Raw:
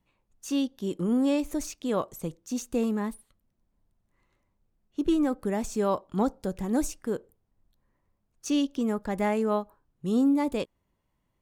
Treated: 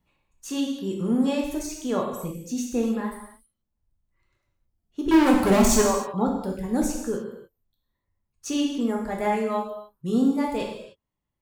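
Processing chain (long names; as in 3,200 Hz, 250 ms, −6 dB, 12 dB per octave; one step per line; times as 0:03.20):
0:05.11–0:05.82: leveller curve on the samples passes 5
reverb reduction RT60 1.8 s
reverb whose tail is shaped and stops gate 330 ms falling, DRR −1 dB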